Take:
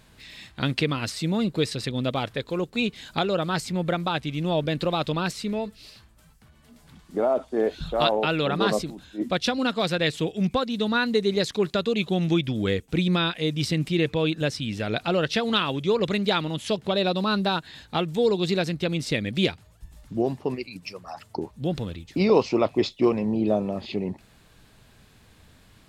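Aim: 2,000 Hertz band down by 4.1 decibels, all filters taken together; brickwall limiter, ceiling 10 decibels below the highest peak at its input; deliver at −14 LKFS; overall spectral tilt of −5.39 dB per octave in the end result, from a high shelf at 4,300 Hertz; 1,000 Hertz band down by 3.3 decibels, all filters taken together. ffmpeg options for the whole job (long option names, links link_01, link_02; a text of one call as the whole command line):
ffmpeg -i in.wav -af "equalizer=frequency=1000:width_type=o:gain=-3.5,equalizer=frequency=2000:width_type=o:gain=-3,highshelf=frequency=4300:gain=-6.5,volume=15.5dB,alimiter=limit=-3.5dB:level=0:latency=1" out.wav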